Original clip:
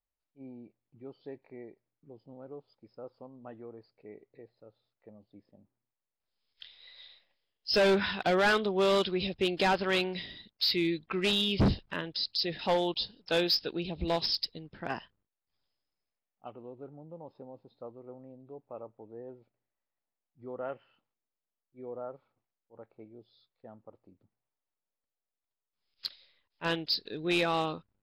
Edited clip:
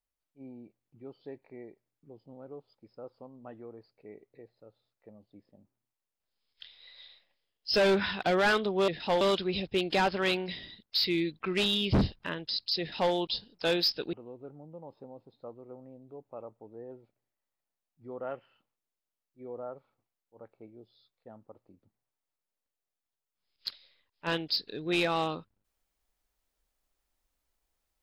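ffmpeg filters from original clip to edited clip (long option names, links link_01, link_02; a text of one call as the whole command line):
ffmpeg -i in.wav -filter_complex "[0:a]asplit=4[link_01][link_02][link_03][link_04];[link_01]atrim=end=8.882[link_05];[link_02]atrim=start=12.468:end=12.802[link_06];[link_03]atrim=start=8.878:end=13.802[link_07];[link_04]atrim=start=16.508[link_08];[link_05][link_06]acrossfade=duration=0.004:curve1=hsin:curve2=hsin[link_09];[link_09][link_07]acrossfade=duration=0.004:curve1=hsin:curve2=hsin[link_10];[link_10][link_08]acrossfade=duration=0.004:curve1=hsin:curve2=hsin" out.wav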